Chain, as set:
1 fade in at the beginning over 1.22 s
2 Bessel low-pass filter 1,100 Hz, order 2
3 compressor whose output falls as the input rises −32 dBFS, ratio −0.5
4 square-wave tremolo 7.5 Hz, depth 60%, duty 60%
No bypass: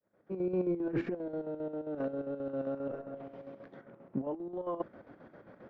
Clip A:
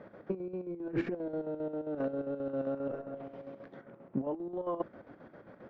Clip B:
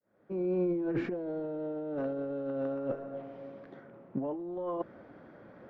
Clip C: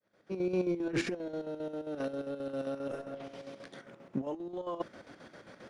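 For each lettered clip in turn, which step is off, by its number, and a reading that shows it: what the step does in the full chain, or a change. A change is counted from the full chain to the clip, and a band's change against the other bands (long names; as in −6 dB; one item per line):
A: 1, change in momentary loudness spread −4 LU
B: 4, change in crest factor −2.0 dB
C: 2, 2 kHz band +7.5 dB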